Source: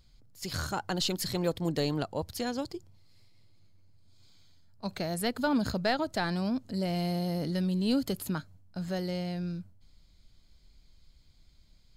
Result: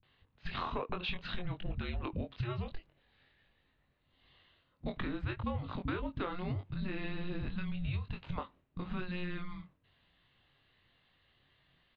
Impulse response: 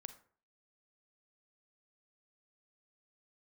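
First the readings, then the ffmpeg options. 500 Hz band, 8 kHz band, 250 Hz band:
-10.5 dB, under -35 dB, -10.0 dB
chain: -filter_complex "[0:a]highpass=f=240:t=q:w=0.5412,highpass=f=240:t=q:w=1.307,lowpass=f=3.4k:t=q:w=0.5176,lowpass=f=3.4k:t=q:w=0.7071,lowpass=f=3.4k:t=q:w=1.932,afreqshift=-360,asplit=2[a][b];[b]adelay=22,volume=-5dB[c];[a][c]amix=inputs=2:normalize=0,acrossover=split=210[d][e];[e]adelay=30[f];[d][f]amix=inputs=2:normalize=0,asplit=2[g][h];[1:a]atrim=start_sample=2205,asetrate=74970,aresample=44100[i];[h][i]afir=irnorm=-1:irlink=0,volume=-6.5dB[j];[g][j]amix=inputs=2:normalize=0,acompressor=threshold=-37dB:ratio=10,volume=4dB"

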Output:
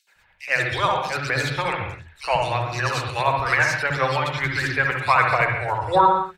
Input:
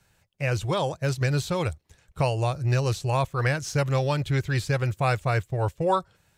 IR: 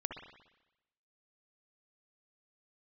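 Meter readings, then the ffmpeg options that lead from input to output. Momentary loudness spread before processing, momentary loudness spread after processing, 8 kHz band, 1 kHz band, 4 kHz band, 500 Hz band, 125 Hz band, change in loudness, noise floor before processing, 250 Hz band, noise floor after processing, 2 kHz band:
4 LU, 7 LU, +1.0 dB, +9.5 dB, +6.5 dB, +2.0 dB, -5.0 dB, +4.5 dB, -66 dBFS, -2.5 dB, -59 dBFS, +12.0 dB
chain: -filter_complex "[0:a]equalizer=f=125:t=o:w=1:g=-9,equalizer=f=1k:t=o:w=1:g=7,equalizer=f=2k:t=o:w=1:g=11,equalizer=f=4k:t=o:w=1:g=7,acrossover=split=290|3300[a][b][c];[b]adelay=70[d];[a]adelay=150[e];[e][d][c]amix=inputs=3:normalize=0,aphaser=in_gain=1:out_gain=1:delay=1.4:decay=0.39:speed=1.5:type=triangular,tremolo=f=9.4:d=0.51[f];[1:a]atrim=start_sample=2205,afade=t=out:st=0.32:d=0.01,atrim=end_sample=14553[g];[f][g]afir=irnorm=-1:irlink=0,volume=2.5dB"

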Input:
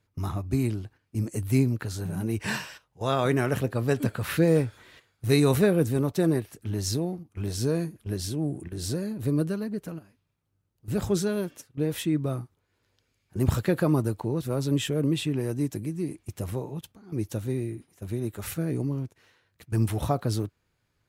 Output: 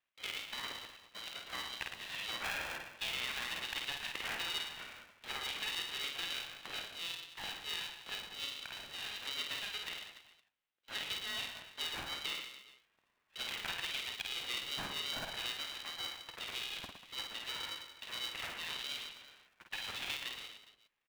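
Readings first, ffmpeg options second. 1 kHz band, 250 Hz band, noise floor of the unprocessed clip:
-9.5 dB, -31.0 dB, -75 dBFS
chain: -filter_complex "[0:a]agate=range=-9dB:threshold=-46dB:ratio=16:detection=peak,highpass=940,dynaudnorm=f=180:g=11:m=5dB,alimiter=limit=-21.5dB:level=0:latency=1:release=170,acompressor=threshold=-40dB:ratio=6,asplit=2[a][b];[b]aecho=0:1:50|112.5|190.6|288.3|410.4:0.631|0.398|0.251|0.158|0.1[c];[a][c]amix=inputs=2:normalize=0,lowpass=f=3.2k:t=q:w=0.5098,lowpass=f=3.2k:t=q:w=0.6013,lowpass=f=3.2k:t=q:w=0.9,lowpass=f=3.2k:t=q:w=2.563,afreqshift=-3800,aeval=exprs='val(0)*sgn(sin(2*PI*420*n/s))':c=same,volume=2.5dB"

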